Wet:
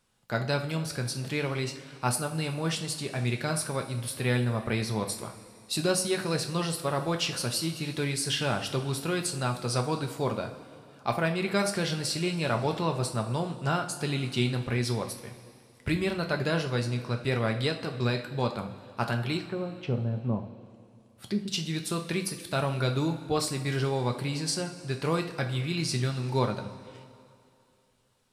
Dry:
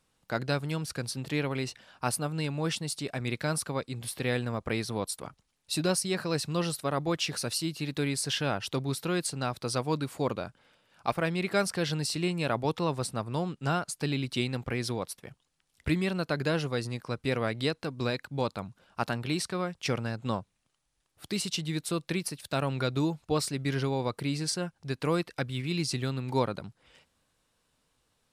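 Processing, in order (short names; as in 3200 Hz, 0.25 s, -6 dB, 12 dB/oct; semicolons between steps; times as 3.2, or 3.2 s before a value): 19.37–21.48 treble ducked by the level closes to 590 Hz, closed at -29.5 dBFS; two-slope reverb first 0.37 s, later 2.6 s, from -15 dB, DRR 3.5 dB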